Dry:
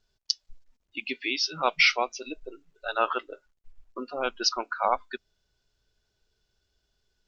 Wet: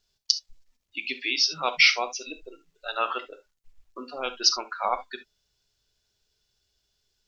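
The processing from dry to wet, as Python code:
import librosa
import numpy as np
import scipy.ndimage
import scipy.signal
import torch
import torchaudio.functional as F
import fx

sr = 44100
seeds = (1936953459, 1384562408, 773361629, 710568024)

y = fx.high_shelf(x, sr, hz=2100.0, db=10.0)
y = fx.notch(y, sr, hz=1500.0, q=23.0)
y = fx.rev_gated(y, sr, seeds[0], gate_ms=90, shape='flat', drr_db=9.5)
y = y * librosa.db_to_amplitude(-4.0)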